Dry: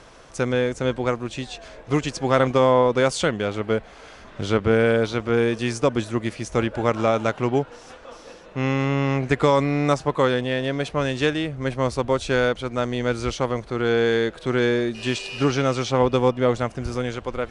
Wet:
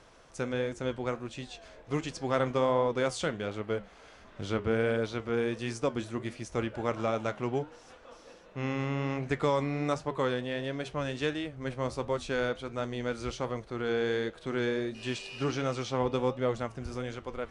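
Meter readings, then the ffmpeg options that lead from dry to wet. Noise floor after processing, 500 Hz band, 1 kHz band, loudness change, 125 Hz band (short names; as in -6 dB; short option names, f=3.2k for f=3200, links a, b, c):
-55 dBFS, -10.0 dB, -10.0 dB, -10.0 dB, -10.0 dB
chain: -af "flanger=delay=9.2:depth=4.4:regen=-75:speed=1.4:shape=triangular,volume=-5.5dB"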